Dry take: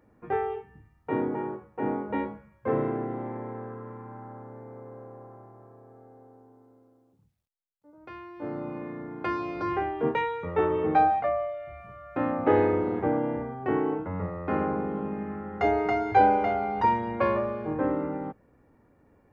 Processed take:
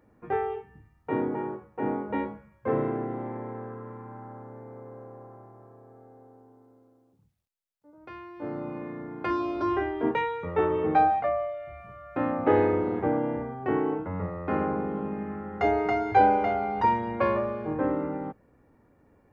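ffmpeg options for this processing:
-filter_complex "[0:a]asettb=1/sr,asplit=3[a][b][c];[a]atrim=end=9.304[d];[b]atrim=start=9.3:end=10.11,asetpts=PTS-STARTPTS,afade=t=in:d=0.004:c=qsin,afade=t=out:st=0.806:d=0.004:c=qsin,aecho=1:1:3.1:0.66,atrim=end_sample=35721[e];[c]atrim=start=10.106[f];[d][e]acrossfade=d=0.004:c1=hsin:c2=qsin[g];[g][f]acrossfade=d=0.004:c1=qsin:c2=hsin"

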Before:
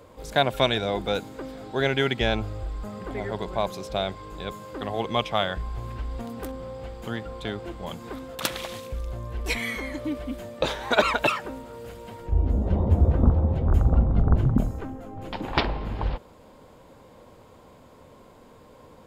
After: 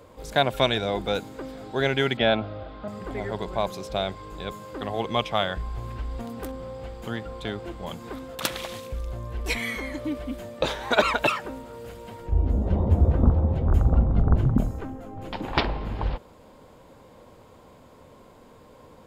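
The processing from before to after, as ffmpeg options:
-filter_complex "[0:a]asettb=1/sr,asplit=3[a][b][c];[a]atrim=end=2.174[d];[b]atrim=start=2.17:end=2.88,asetpts=PTS-STARTPTS,afade=t=in:d=0.004:c=qsin,afade=t=out:st=0.706:d=0.004:c=qsin,highpass=110,equalizer=f=260:t=q:w=4:g=7,equalizer=f=380:t=q:w=4:g=-4,equalizer=f=630:t=q:w=4:g=10,equalizer=f=1.4k:t=q:w=4:g=5,equalizer=f=3.5k:t=q:w=4:g=4,lowpass=f=4k:w=0.5412,lowpass=f=4k:w=1.3066[e];[c]atrim=start=2.876[f];[d][e]acrossfade=d=0.004:c1=hsin:c2=qsin[g];[g][f]acrossfade=d=0.004:c1=qsin:c2=hsin"

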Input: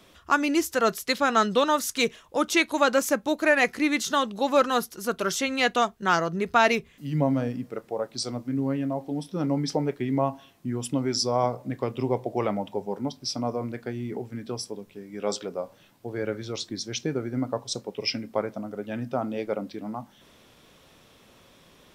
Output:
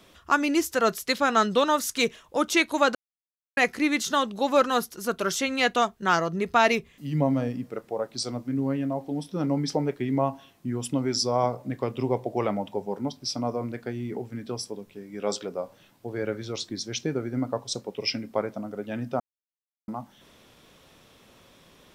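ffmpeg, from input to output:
-filter_complex "[0:a]asettb=1/sr,asplit=3[a][b][c];[a]atrim=end=6.194[d];[b]atrim=start=6.19:end=7.62,asetpts=PTS-STARTPTS,afade=t=in:d=0.004:c=qsin,afade=t=out:st=1.426:d=0.004:c=qsin,bandreject=f=1.5k:w=12[e];[c]atrim=start=7.616[f];[d][e]acrossfade=d=0.004:c1=hsin:c2=qsin[g];[g][f]acrossfade=d=0.004:c1=qsin:c2=hsin,asplit=5[h][i][j][k][l];[h]atrim=end=2.95,asetpts=PTS-STARTPTS,afade=t=out:st=2.946:d=0.004:c=hsin[m];[i]atrim=start=2.95:end=3.57,asetpts=PTS-STARTPTS,volume=0[n];[j]atrim=start=3.57:end=19.2,asetpts=PTS-STARTPTS,afade=t=in:d=0.004:c=hsin,afade=t=out:st=15.626:d=0.004:c=hsin[o];[k]atrim=start=19.2:end=19.88,asetpts=PTS-STARTPTS,volume=0[p];[l]atrim=start=19.88,asetpts=PTS-STARTPTS,afade=t=in:d=0.004:c=hsin[q];[m][n][o][p][q]concat=n=5:v=0:a=1"

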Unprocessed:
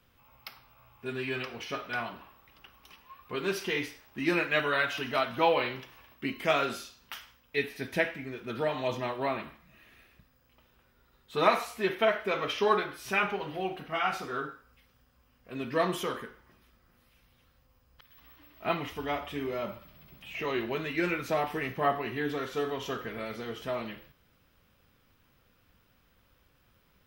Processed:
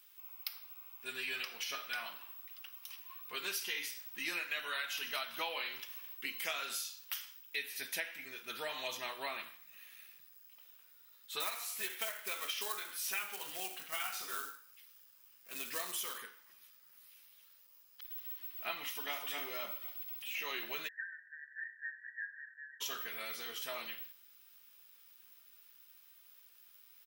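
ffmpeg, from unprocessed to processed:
-filter_complex "[0:a]asettb=1/sr,asplit=3[a][b][c];[a]atrim=end=11.404[d];[b]atrim=start=11.4:end=16.18,asetpts=PTS-STARTPTS,afade=t=in:d=0.004:c=qsin,afade=t=out:st=4.776:d=0.004:c=qsin,acrusher=bits=4:mode=log:mix=0:aa=0.000001[e];[c]atrim=start=16.176[f];[d][e]acrossfade=d=0.004:c1=hsin:c2=qsin[g];[g][f]acrossfade=d=0.004:c1=qsin:c2=hsin,asplit=2[h][i];[i]afade=t=in:st=18.81:d=0.01,afade=t=out:st=19.27:d=0.01,aecho=0:1:250|500|750|1000:0.595662|0.208482|0.0729686|0.025539[j];[h][j]amix=inputs=2:normalize=0,asplit=3[k][l][m];[k]afade=t=out:st=20.87:d=0.02[n];[l]asuperpass=centerf=1700:order=20:qfactor=4.4,afade=t=in:st=20.87:d=0.02,afade=t=out:st=22.8:d=0.02[o];[m]afade=t=in:st=22.8:d=0.02[p];[n][o][p]amix=inputs=3:normalize=0,aderivative,acompressor=threshold=-45dB:ratio=6,volume=9.5dB"

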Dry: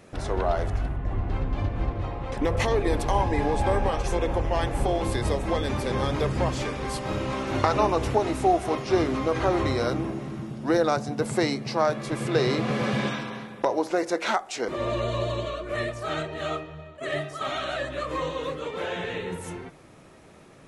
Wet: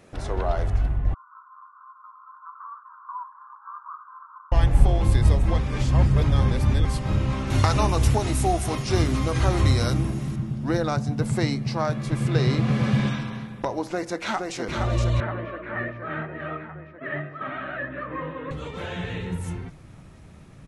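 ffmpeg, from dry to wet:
-filter_complex "[0:a]asettb=1/sr,asplit=3[a][b][c];[a]atrim=end=1.144[d];[b]atrim=start=1.14:end=4.52,asetpts=PTS-STARTPTS,afade=t=in:d=0.004:c=qsin,afade=t=out:st=3.376:d=0.004:c=qsin,asuperpass=centerf=1200:order=12:qfactor=2.5[e];[c]atrim=start=4.516[f];[d][e]acrossfade=d=0.004:c1=hsin:c2=qsin[g];[g][f]acrossfade=d=0.004:c1=qsin:c2=hsin,asettb=1/sr,asplit=3[h][i][j];[h]atrim=end=7.504[k];[i]atrim=start=7.5:end=10.36,asetpts=PTS-STARTPTS,afade=t=in:d=0.004:c=qsin,afade=t=out:st=2.856:d=0.004:c=qsin,aemphasis=mode=production:type=75kf[l];[j]atrim=start=10.356[m];[k][l]acrossfade=d=0.004:c1=hsin:c2=qsin[n];[n][m]acrossfade=d=0.004:c1=qsin:c2=hsin,asplit=2[o][p];[p]afade=t=in:st=13.87:d=0.01,afade=t=out:st=14.56:d=0.01,aecho=0:1:470|940|1410|1880|2350|2820|3290|3760|4230|4700|5170|5640:0.630957|0.44167|0.309169|0.216418|0.151493|0.106045|0.0742315|0.0519621|0.0363734|0.0254614|0.017823|0.0124761[q];[o][q]amix=inputs=2:normalize=0,asettb=1/sr,asplit=3[r][s][t];[r]atrim=end=15.204[u];[s]atrim=start=15.2:end=18.51,asetpts=PTS-STARTPTS,afade=t=in:d=0.004:c=qsin,afade=t=out:st=3.306:d=0.004:c=qsin,highpass=200,equalizer=f=260:t=q:w=4:g=4,equalizer=f=770:t=q:w=4:g=-4,equalizer=f=1.7k:t=q:w=4:g=7,lowpass=f=2.2k:w=0.5412,lowpass=f=2.2k:w=1.3066[v];[t]atrim=start=18.506[w];[u][v]acrossfade=d=0.004:c1=hsin:c2=qsin[x];[x][w]acrossfade=d=0.004:c1=qsin:c2=hsin,asplit=3[y][z][aa];[y]atrim=end=5.582[ab];[z]atrim=start=5.578:end=6.852,asetpts=PTS-STARTPTS,areverse[ac];[aa]atrim=start=6.848[ad];[ab][ac]acrossfade=d=0.004:c1=hsin:c2=hsin[ae];[ae][ad]acrossfade=d=0.004:c1=hsin:c2=hsin,asubboost=boost=5.5:cutoff=170,volume=-1.5dB"

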